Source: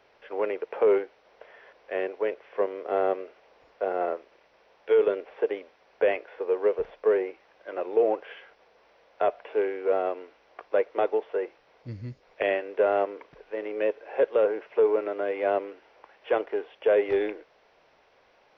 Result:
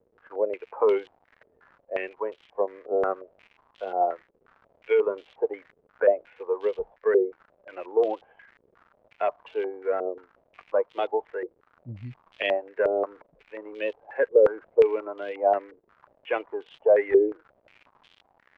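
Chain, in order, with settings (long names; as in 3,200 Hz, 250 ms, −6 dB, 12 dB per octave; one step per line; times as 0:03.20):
spectral dynamics exaggerated over time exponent 1.5
surface crackle 190 per second −41 dBFS
low-pass on a step sequencer 5.6 Hz 450–3,200 Hz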